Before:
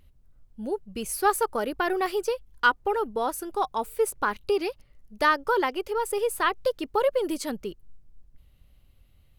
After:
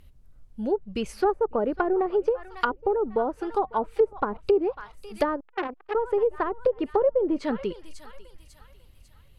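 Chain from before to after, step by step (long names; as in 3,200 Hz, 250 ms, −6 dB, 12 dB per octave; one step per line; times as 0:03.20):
feedback echo with a high-pass in the loop 547 ms, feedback 45%, high-pass 750 Hz, level −18 dB
treble cut that deepens with the level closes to 550 Hz, closed at −22 dBFS
0:05.40–0:05.95: saturating transformer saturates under 1,500 Hz
level +4.5 dB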